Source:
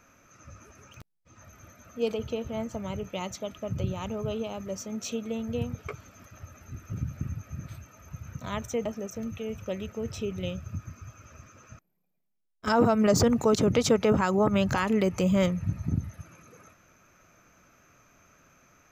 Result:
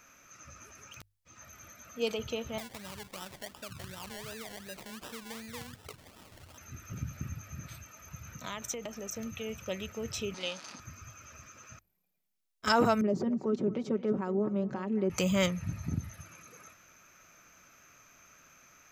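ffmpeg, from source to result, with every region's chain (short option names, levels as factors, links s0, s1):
-filter_complex "[0:a]asettb=1/sr,asplit=3[s0][s1][s2];[s0]atrim=end=2.584[s3];[s1]atrim=start=2.58:end=6.58,asetpts=PTS-STARTPTS,afade=t=in:d=0.004:c=qsin,afade=t=out:st=3.996:d=0.004:c=qsin,acrusher=samples=28:mix=1:aa=0.000001:lfo=1:lforange=16.8:lforate=2.7,acompressor=threshold=0.00562:ratio=2:attack=3.2:release=140:knee=1:detection=peak[s4];[s2]atrim=start=6.576[s5];[s3][s4]acrossfade=d=0.004:c1=hsin:c2=qsin[s6];[s6][s5]acrossfade=d=0.004:c1=qsin:c2=hsin,asettb=1/sr,asplit=3[s7][s8][s9];[s7]atrim=end=8.354[s10];[s8]atrim=start=8.35:end=9.12,asetpts=PTS-STARTPTS,afade=t=in:d=0.004:c=qsin,afade=t=out:st=0.766:d=0.004:c=qsin,highpass=150,acompressor=threshold=0.0251:ratio=5:attack=3.2:release=140:knee=1:detection=peak,aeval=exprs='val(0)+0.00178*(sin(2*PI*60*n/s)+sin(2*PI*2*60*n/s)/2+sin(2*PI*3*60*n/s)/3+sin(2*PI*4*60*n/s)/4+sin(2*PI*5*60*n/s)/5)':c=same[s11];[s9]atrim=start=9.116[s12];[s10][s11]acrossfade=d=0.004:c1=hsin:c2=qsin[s13];[s13][s12]acrossfade=d=0.004:c1=qsin:c2=hsin,asettb=1/sr,asplit=3[s14][s15][s16];[s14]atrim=end=10.344[s17];[s15]atrim=start=10.34:end=10.8,asetpts=PTS-STARTPTS,afade=t=in:d=0.004:c=qsin,afade=t=out:st=0.456:d=0.004:c=qsin,aeval=exprs='val(0)+0.5*0.00891*sgn(val(0))':c=same,highpass=f=250:w=0.5412,highpass=f=250:w=1.3066,equalizer=f=400:t=q:w=4:g=-6,equalizer=f=910:t=q:w=4:g=6,equalizer=f=4600:t=q:w=4:g=9,equalizer=f=8000:t=q:w=4:g=-7,lowpass=f=8700:w=0.5412,lowpass=f=8700:w=1.3066[s18];[s16]atrim=start=10.796[s19];[s17][s18]acrossfade=d=0.004:c1=hsin:c2=qsin[s20];[s20][s19]acrossfade=d=0.004:c1=qsin:c2=hsin,asettb=1/sr,asplit=3[s21][s22][s23];[s21]atrim=end=13.014[s24];[s22]atrim=start=13.01:end=15.1,asetpts=PTS-STARTPTS,afade=t=in:d=0.004:c=qsin,afade=t=out:st=2.086:d=0.004:c=qsin,bandpass=f=300:t=q:w=1.8,aecho=1:1:5.3:0.65,atrim=end_sample=92169,aecho=1:1:224:0.15,atrim=end_sample=92169[s25];[s23]atrim=start=15.096[s26];[s24][s25]acrossfade=d=0.004:c1=hsin:c2=qsin[s27];[s27][s26]acrossfade=d=0.004:c1=qsin:c2=hsin,tiltshelf=f=1200:g=-5.5,bandreject=f=50:t=h:w=6,bandreject=f=100:t=h:w=6"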